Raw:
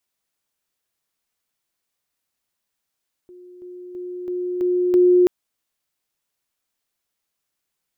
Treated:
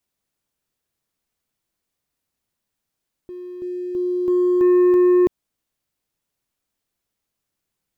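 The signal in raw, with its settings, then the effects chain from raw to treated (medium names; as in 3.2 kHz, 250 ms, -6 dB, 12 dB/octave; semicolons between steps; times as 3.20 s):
level ladder 359 Hz -40.5 dBFS, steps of 6 dB, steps 6, 0.33 s 0.00 s
bass shelf 440 Hz +10 dB; peak limiter -11.5 dBFS; waveshaping leveller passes 1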